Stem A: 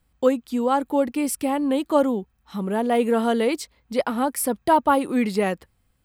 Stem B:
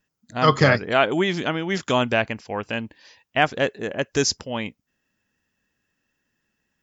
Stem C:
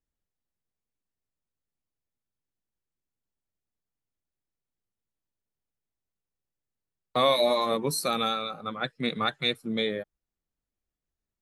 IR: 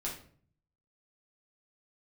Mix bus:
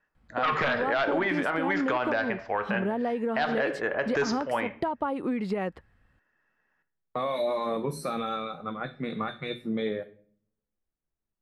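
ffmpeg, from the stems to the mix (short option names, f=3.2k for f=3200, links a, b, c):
-filter_complex "[0:a]aemphasis=mode=production:type=50fm,acompressor=threshold=-25dB:ratio=6,adelay=150,volume=2.5dB[a];[1:a]highshelf=f=2.3k:t=q:w=1.5:g=-10,aeval=exprs='0.75*sin(PI/2*2.51*val(0)/0.75)':c=same,acrossover=split=470 4900:gain=0.2 1 0.0794[b][c][d];[b][c][d]amix=inputs=3:normalize=0,volume=-10dB,asplit=2[e][f];[f]volume=-7dB[g];[2:a]bandreject=f=60:t=h:w=6,bandreject=f=120:t=h:w=6,alimiter=limit=-19dB:level=0:latency=1:release=16,volume=-1.5dB,asplit=2[h][i];[i]volume=-11dB[j];[a][h]amix=inputs=2:normalize=0,lowpass=2k,acompressor=threshold=-25dB:ratio=6,volume=0dB[k];[3:a]atrim=start_sample=2205[l];[g][j]amix=inputs=2:normalize=0[m];[m][l]afir=irnorm=-1:irlink=0[n];[e][k][n]amix=inputs=3:normalize=0,alimiter=limit=-17dB:level=0:latency=1:release=72"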